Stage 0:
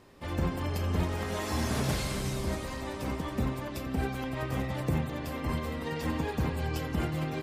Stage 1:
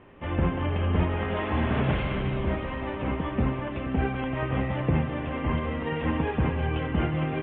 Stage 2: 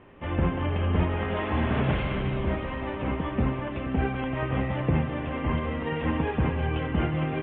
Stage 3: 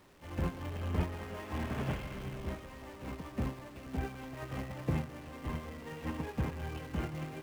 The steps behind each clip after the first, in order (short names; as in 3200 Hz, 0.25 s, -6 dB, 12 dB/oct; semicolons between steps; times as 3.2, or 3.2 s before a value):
steep low-pass 3200 Hz 72 dB/oct; gain +5 dB
nothing audible
zero-crossing step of -28 dBFS; upward expander 2.5:1, over -32 dBFS; gain -7.5 dB